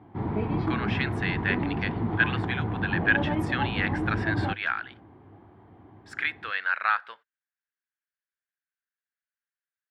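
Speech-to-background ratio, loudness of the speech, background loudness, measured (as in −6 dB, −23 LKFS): 0.0 dB, −29.5 LKFS, −29.5 LKFS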